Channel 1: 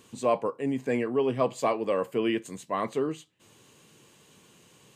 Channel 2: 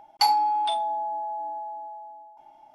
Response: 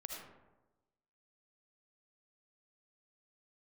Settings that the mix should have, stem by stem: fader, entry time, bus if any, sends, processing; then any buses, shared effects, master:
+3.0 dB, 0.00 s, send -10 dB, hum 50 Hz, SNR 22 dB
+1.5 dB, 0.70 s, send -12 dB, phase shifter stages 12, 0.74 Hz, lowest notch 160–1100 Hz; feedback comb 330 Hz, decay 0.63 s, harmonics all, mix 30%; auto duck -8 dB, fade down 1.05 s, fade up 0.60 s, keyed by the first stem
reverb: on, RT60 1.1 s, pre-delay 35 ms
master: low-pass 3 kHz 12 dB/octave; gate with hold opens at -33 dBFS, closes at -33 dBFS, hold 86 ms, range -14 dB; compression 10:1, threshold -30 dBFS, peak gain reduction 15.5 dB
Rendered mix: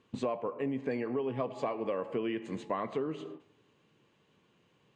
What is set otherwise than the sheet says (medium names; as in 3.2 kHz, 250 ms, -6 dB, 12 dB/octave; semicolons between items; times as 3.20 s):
stem 1: missing hum 50 Hz, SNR 22 dB; stem 2 +1.5 dB -> -9.0 dB